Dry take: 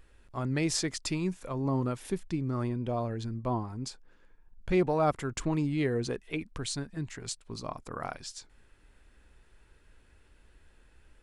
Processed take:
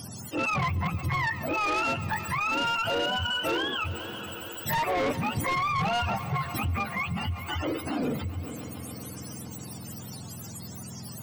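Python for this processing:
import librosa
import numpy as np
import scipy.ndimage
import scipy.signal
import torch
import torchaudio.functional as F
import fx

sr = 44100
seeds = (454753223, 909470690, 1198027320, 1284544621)

y = fx.octave_mirror(x, sr, pivot_hz=580.0)
y = fx.notch(y, sr, hz=2300.0, q=16.0)
y = 10.0 ** (-32.5 / 20.0) * np.tanh(y / 10.0 ** (-32.5 / 20.0))
y = fx.echo_heads(y, sr, ms=139, heads='first and third', feedback_pct=70, wet_db=-23.0)
y = fx.env_flatten(y, sr, amount_pct=50)
y = F.gain(torch.from_numpy(y), 8.0).numpy()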